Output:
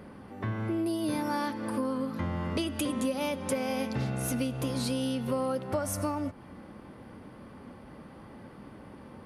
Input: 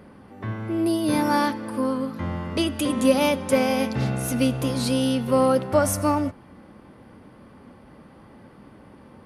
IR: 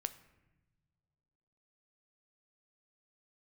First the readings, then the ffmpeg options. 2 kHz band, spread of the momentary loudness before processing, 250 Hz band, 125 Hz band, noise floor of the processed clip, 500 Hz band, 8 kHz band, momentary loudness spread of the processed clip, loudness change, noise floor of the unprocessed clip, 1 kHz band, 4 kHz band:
-8.5 dB, 9 LU, -8.0 dB, -6.0 dB, -49 dBFS, -10.0 dB, -7.0 dB, 18 LU, -8.5 dB, -49 dBFS, -9.5 dB, -8.5 dB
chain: -af "acompressor=threshold=-28dB:ratio=6"

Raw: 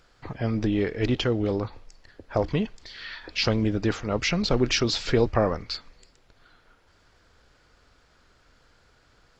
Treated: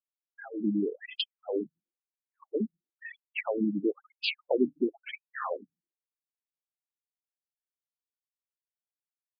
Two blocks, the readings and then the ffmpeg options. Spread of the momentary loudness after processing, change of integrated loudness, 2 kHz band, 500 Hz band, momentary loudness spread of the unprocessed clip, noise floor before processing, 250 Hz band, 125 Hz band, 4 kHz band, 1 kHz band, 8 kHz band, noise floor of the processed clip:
15 LU, -6.5 dB, -7.5 dB, -6.5 dB, 12 LU, -62 dBFS, -5.5 dB, under -15 dB, -8.5 dB, -8.5 dB, n/a, under -85 dBFS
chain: -af "afftfilt=real='re*gte(hypot(re,im),0.0355)':imag='im*gte(hypot(re,im),0.0355)':win_size=1024:overlap=0.75,afftfilt=real='re*between(b*sr/1024,210*pow(3600/210,0.5+0.5*sin(2*PI*1*pts/sr))/1.41,210*pow(3600/210,0.5+0.5*sin(2*PI*1*pts/sr))*1.41)':imag='im*between(b*sr/1024,210*pow(3600/210,0.5+0.5*sin(2*PI*1*pts/sr))/1.41,210*pow(3600/210,0.5+0.5*sin(2*PI*1*pts/sr))*1.41)':win_size=1024:overlap=0.75"

